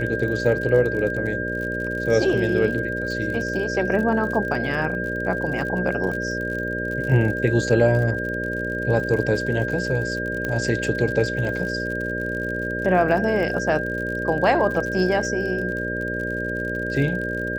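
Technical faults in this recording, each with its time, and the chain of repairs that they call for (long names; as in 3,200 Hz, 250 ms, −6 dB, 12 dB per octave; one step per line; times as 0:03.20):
mains buzz 60 Hz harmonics 10 −29 dBFS
surface crackle 55 per second −30 dBFS
whistle 1,600 Hz −27 dBFS
0:10.45: click −14 dBFS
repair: click removal
hum removal 60 Hz, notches 10
notch filter 1,600 Hz, Q 30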